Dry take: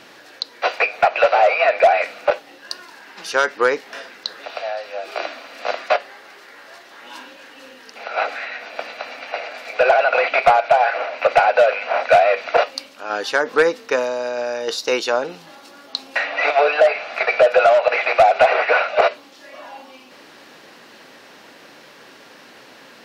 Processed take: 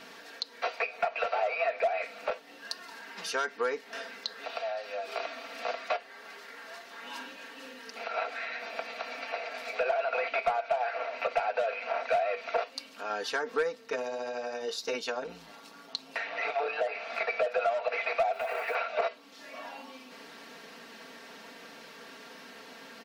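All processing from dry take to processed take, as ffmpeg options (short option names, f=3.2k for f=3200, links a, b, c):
-filter_complex "[0:a]asettb=1/sr,asplit=3[a][b][c];[a]atrim=end=13.754[d];[b]atrim=start=13.75:end=16.93,asetpts=PTS-STARTPTS,afade=t=in:d=0.004:c=qsin,afade=t=out:st=3.176:d=0.004:c=qsin,tremolo=f=110:d=0.75,highpass=f=40:p=1[e];[c]atrim=start=16.926[f];[d][e]acrossfade=d=0.004:c1=hsin:c2=qsin[g];[g][f]acrossfade=d=0.004:c1=qsin:c2=hsin,asettb=1/sr,asplit=3[h][i][j];[h]atrim=end=18.334[k];[i]atrim=start=18.33:end=18.75,asetpts=PTS-STARTPTS,afade=t=in:d=0.004:c=qsin,afade=t=out:st=0.416:d=0.004:c=qsin,lowpass=7k,acrusher=bits=6:mode=log:mix=0:aa=0.000001,acompressor=threshold=-18dB:ratio=5:attack=3.2:release=140:knee=1:detection=peak[l];[j]atrim=start=18.746[m];[k][l]acrossfade=d=0.004:c1=hsin:c2=qsin[n];[n][m]acrossfade=d=0.004:c1=qsin:c2=hsin,aecho=1:1:4.4:0.72,acompressor=threshold=-29dB:ratio=2,volume=-6dB"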